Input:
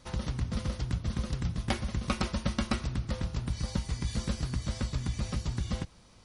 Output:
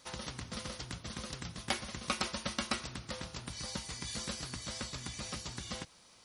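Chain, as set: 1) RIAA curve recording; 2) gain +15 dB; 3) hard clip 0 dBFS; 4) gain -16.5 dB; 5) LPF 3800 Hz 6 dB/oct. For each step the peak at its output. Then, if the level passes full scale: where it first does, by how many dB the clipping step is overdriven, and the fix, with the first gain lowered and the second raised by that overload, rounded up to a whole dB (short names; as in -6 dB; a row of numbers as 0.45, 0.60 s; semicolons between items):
-10.5, +4.5, 0.0, -16.5, -17.0 dBFS; step 2, 4.5 dB; step 2 +10 dB, step 4 -11.5 dB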